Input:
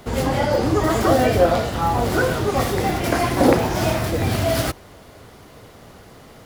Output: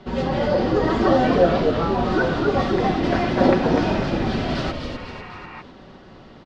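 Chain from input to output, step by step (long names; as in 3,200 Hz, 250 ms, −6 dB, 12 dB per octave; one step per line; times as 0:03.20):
notch filter 2,200 Hz, Q 12
comb filter 5.3 ms, depth 73%
echo with shifted repeats 249 ms, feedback 49%, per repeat −74 Hz, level −5 dB
healed spectral selection 0:04.80–0:05.59, 690–2,800 Hz before
low-pass filter 4,600 Hz 24 dB per octave
parametric band 260 Hz +5 dB 0.74 octaves
level −4.5 dB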